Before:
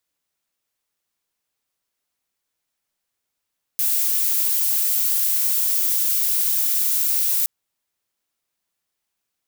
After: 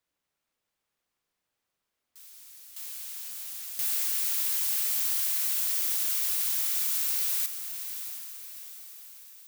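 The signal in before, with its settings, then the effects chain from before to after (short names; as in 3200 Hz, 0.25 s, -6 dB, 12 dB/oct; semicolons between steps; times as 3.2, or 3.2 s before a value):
noise violet, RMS -20 dBFS 3.67 s
high shelf 3800 Hz -9 dB; on a send: diffused feedback echo 0.704 s, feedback 47%, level -9 dB; on the sum: echoes that change speed 0.234 s, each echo +7 st, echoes 2, each echo -6 dB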